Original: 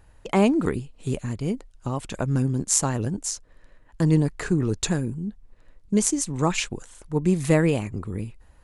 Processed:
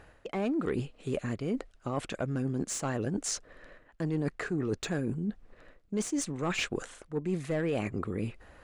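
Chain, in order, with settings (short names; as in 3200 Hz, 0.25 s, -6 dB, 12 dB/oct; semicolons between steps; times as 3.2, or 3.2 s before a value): overdrive pedal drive 20 dB, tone 1200 Hz, clips at -3 dBFS; bell 930 Hz -9 dB 0.36 oct; reverse; compressor 5:1, threshold -30 dBFS, peak gain reduction 17 dB; reverse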